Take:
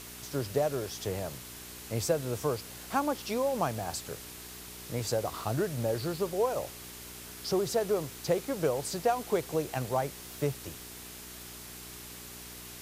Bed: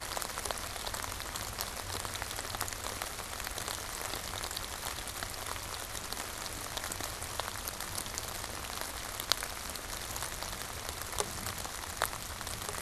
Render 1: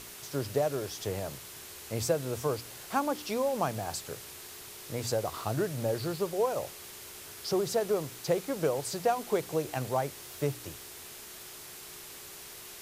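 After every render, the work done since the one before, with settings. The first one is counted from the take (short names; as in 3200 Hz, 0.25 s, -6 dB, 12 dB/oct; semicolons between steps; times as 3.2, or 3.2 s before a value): de-hum 60 Hz, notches 5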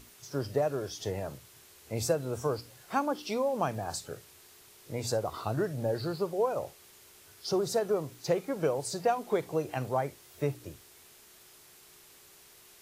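noise print and reduce 10 dB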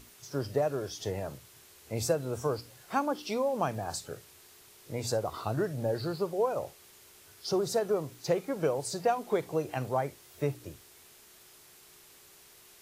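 nothing audible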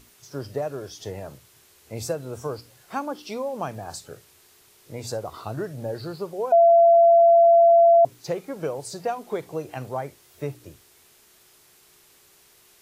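6.52–8.05 bleep 678 Hz -11 dBFS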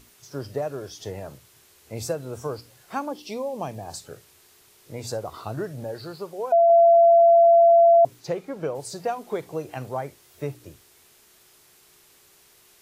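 3.09–3.94 bell 1400 Hz -11.5 dB 0.5 oct; 5.84–6.7 low shelf 470 Hz -5.5 dB; 8.19–8.74 LPF 6500 Hz -> 3400 Hz 6 dB/oct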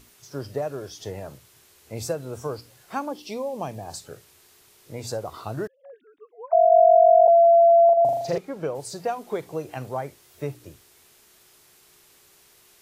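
5.67–7.28 sine-wave speech; 7.85–8.38 flutter echo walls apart 7 m, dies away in 0.88 s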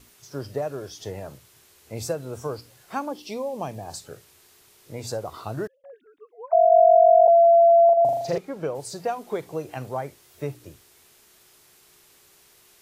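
gate with hold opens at -52 dBFS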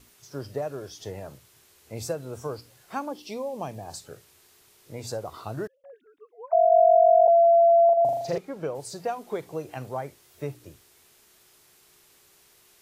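gain -2.5 dB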